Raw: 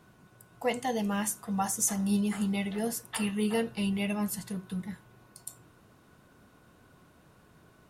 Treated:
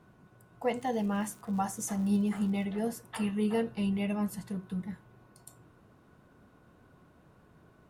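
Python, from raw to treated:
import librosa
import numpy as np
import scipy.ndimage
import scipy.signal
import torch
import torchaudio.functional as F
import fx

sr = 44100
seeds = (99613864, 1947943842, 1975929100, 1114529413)

y = fx.high_shelf(x, sr, hz=2300.0, db=-10.5)
y = fx.dmg_crackle(y, sr, seeds[0], per_s=170.0, level_db=-45.0, at=(0.75, 2.63), fade=0.02)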